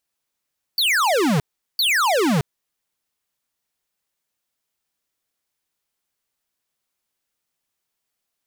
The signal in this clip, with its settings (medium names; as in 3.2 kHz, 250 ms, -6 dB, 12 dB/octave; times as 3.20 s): burst of laser zaps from 4.7 kHz, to 130 Hz, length 0.62 s square, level -18 dB, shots 2, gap 0.39 s